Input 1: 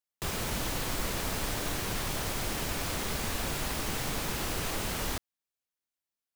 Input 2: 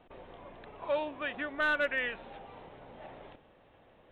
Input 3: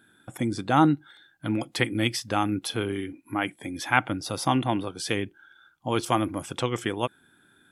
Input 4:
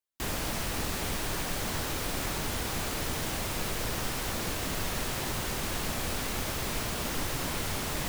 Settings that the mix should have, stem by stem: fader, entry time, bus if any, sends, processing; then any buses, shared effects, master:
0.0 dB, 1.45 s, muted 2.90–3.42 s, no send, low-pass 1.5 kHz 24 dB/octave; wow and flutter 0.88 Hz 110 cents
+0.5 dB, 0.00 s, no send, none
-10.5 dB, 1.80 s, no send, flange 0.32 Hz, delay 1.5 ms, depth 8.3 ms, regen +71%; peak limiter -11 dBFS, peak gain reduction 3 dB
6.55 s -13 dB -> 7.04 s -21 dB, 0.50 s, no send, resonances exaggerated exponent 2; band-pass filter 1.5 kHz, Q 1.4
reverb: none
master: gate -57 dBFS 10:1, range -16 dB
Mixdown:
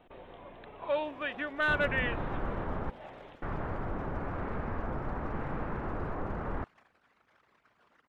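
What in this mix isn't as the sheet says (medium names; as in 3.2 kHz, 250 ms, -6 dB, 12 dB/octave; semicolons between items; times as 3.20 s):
stem 3: muted; stem 4: entry 0.50 s -> 0.85 s; master: missing gate -57 dBFS 10:1, range -16 dB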